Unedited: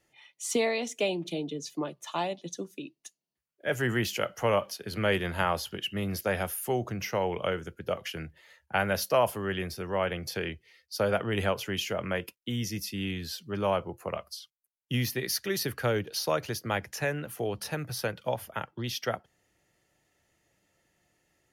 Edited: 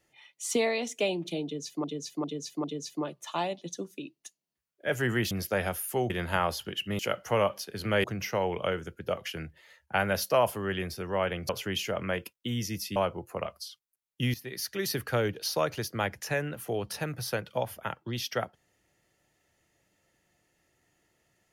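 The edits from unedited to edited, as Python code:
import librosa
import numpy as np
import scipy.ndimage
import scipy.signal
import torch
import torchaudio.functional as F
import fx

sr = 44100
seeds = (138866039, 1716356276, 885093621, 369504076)

y = fx.edit(x, sr, fx.repeat(start_s=1.44, length_s=0.4, count=4),
    fx.swap(start_s=4.11, length_s=1.05, other_s=6.05, other_length_s=0.79),
    fx.cut(start_s=10.29, length_s=1.22),
    fx.cut(start_s=12.98, length_s=0.69),
    fx.fade_in_from(start_s=15.05, length_s=0.58, floor_db=-14.0), tone=tone)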